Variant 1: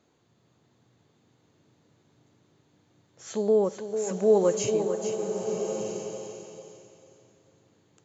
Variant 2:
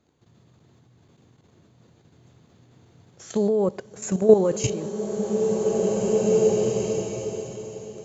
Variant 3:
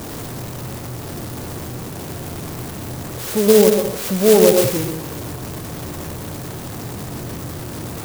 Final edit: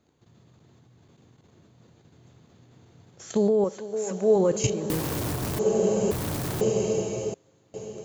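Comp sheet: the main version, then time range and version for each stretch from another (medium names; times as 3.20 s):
2
3.64–4.36 s: from 1
4.90–5.59 s: from 3
6.11–6.61 s: from 3
7.34–7.74 s: from 1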